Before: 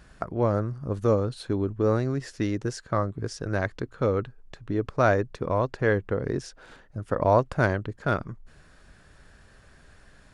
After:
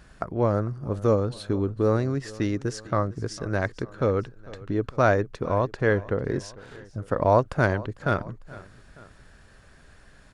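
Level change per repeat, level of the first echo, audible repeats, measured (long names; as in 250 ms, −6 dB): −4.5 dB, −20.0 dB, 2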